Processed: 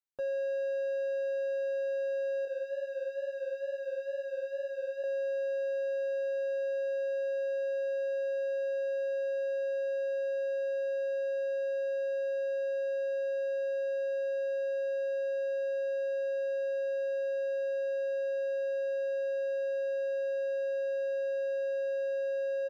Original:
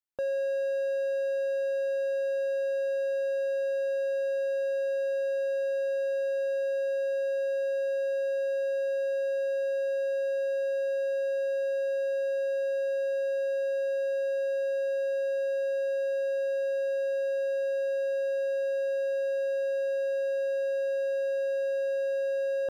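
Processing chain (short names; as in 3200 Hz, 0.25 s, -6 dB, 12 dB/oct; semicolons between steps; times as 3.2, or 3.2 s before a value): comb 7.3 ms, depth 62%; 2.45–5.04 chorus 2.2 Hz, depth 5.8 ms; gain -7.5 dB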